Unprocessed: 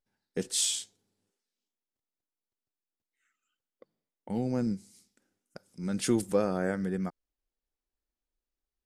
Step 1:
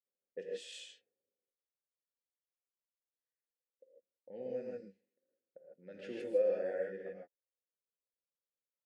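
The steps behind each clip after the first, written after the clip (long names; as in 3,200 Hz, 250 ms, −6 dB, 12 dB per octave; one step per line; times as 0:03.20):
low-pass that shuts in the quiet parts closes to 570 Hz, open at −24.5 dBFS
formant filter e
reverb whose tail is shaped and stops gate 180 ms rising, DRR −3 dB
level −2.5 dB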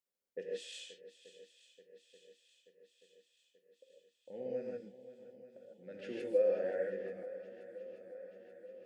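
feedback echo with a long and a short gap by turns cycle 882 ms, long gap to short 1.5 to 1, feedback 61%, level −15 dB
level +1 dB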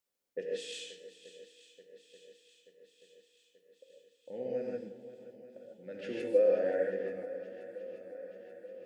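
feedback delay network reverb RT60 1.4 s, low-frequency decay 1.55×, high-frequency decay 0.85×, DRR 10.5 dB
level +4.5 dB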